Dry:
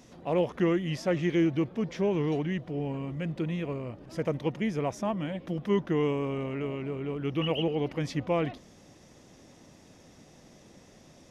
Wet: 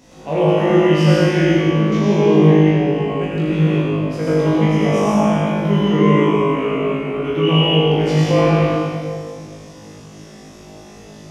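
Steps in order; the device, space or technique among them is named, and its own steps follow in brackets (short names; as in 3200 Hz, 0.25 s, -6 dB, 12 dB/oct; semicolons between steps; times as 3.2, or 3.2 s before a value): tunnel (flutter echo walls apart 3.3 m, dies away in 0.81 s; reverb RT60 2.2 s, pre-delay 72 ms, DRR -5 dB); gain +3.5 dB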